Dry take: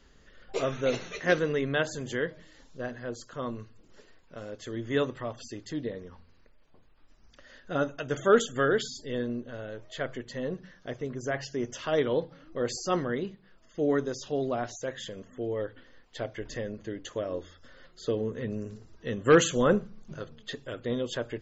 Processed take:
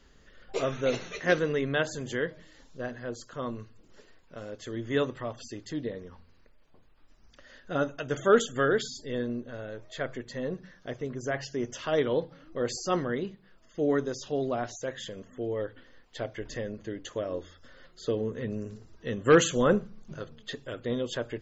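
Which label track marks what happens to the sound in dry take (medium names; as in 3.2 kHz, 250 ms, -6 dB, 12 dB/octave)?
8.730000	10.780000	band-stop 3 kHz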